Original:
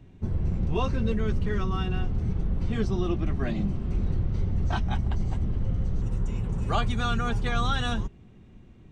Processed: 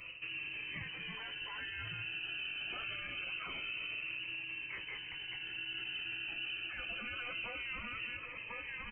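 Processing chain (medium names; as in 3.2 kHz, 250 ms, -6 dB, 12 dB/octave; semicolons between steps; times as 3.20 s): peaking EQ 98 Hz +12 dB 0.49 oct; hum notches 60/120/180/240 Hz; in parallel at -10 dB: sample-and-hold 33×; on the sum: frequency inversion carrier 2.9 kHz; delay 1045 ms -21 dB; spectral gate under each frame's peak -15 dB weak; reverse; compression 10:1, threshold -44 dBFS, peak gain reduction 21 dB; reverse; feedback comb 55 Hz, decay 0.25 s, harmonics all, mix 60%; peak limiter -48 dBFS, peak gain reduction 10.5 dB; Shepard-style phaser falling 0.25 Hz; trim +16 dB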